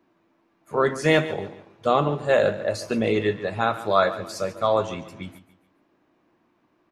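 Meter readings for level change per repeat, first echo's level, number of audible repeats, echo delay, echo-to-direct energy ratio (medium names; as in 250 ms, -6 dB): -9.5 dB, -15.0 dB, 3, 142 ms, -14.5 dB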